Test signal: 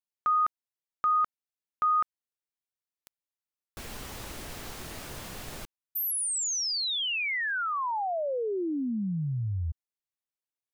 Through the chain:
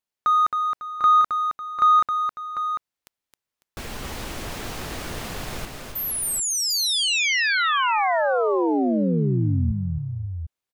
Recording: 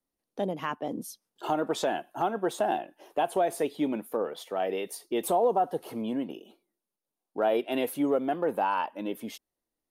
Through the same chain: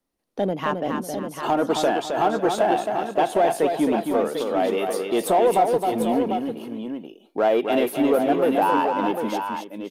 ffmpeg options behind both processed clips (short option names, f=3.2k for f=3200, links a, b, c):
-filter_complex "[0:a]highshelf=f=6.3k:g=-6,asplit=2[a][b];[b]asoftclip=type=hard:threshold=-27.5dB,volume=-5.5dB[c];[a][c]amix=inputs=2:normalize=0,aecho=1:1:267|550|747:0.531|0.188|0.422,volume=4dB"